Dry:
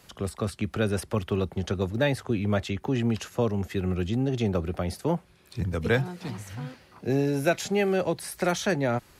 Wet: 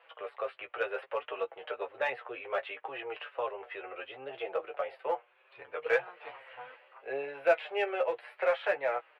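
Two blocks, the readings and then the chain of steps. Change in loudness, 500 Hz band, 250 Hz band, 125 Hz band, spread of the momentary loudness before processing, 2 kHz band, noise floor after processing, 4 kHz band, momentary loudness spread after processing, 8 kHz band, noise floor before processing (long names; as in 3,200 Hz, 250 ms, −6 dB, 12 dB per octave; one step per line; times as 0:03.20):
−6.5 dB, −4.5 dB, −25.0 dB, below −35 dB, 9 LU, −2.0 dB, −65 dBFS, −9.0 dB, 15 LU, below −30 dB, −57 dBFS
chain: elliptic band-pass filter 500–2,800 Hz, stop band 40 dB
flanger 0.67 Hz, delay 5.9 ms, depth 2.6 ms, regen +15%
in parallel at −8.5 dB: hard clipping −27.5 dBFS, distortion −10 dB
on the sum: double-tracking delay 15 ms −7 dB
level −1 dB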